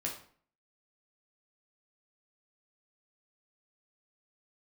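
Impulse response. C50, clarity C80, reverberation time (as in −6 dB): 6.5 dB, 11.0 dB, 0.50 s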